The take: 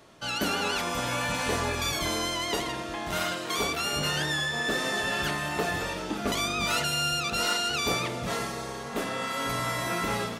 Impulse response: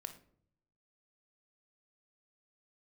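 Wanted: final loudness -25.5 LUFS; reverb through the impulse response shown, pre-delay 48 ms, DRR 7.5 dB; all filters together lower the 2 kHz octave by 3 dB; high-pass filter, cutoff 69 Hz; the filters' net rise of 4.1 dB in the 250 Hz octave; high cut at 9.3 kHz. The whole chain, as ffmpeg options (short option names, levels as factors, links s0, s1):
-filter_complex "[0:a]highpass=69,lowpass=9300,equalizer=f=250:t=o:g=5.5,equalizer=f=2000:t=o:g=-4,asplit=2[s0][s1];[1:a]atrim=start_sample=2205,adelay=48[s2];[s1][s2]afir=irnorm=-1:irlink=0,volume=0.668[s3];[s0][s3]amix=inputs=2:normalize=0,volume=1.33"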